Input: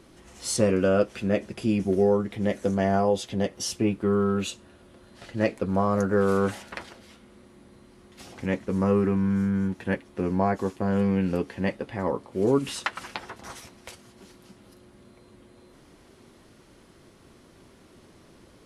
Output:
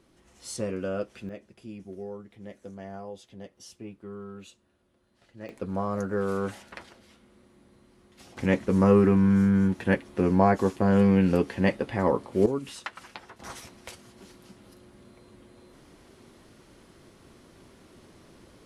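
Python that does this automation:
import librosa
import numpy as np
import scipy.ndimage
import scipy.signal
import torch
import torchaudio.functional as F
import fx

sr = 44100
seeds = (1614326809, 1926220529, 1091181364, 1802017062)

y = fx.gain(x, sr, db=fx.steps((0.0, -9.5), (1.29, -17.5), (5.49, -6.0), (8.37, 3.5), (12.46, -8.0), (13.4, 0.0)))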